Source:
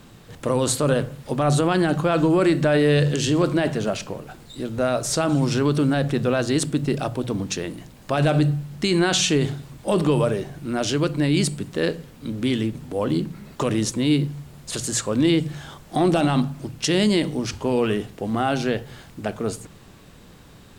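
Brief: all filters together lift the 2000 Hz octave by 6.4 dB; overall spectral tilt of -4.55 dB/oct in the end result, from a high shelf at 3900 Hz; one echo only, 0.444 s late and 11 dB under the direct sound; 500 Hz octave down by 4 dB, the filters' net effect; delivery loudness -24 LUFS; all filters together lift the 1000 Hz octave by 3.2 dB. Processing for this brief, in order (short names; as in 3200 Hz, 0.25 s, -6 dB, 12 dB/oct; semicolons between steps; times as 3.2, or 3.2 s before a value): bell 500 Hz -7 dB; bell 1000 Hz +5 dB; bell 2000 Hz +9 dB; high shelf 3900 Hz -7.5 dB; echo 0.444 s -11 dB; gain -1 dB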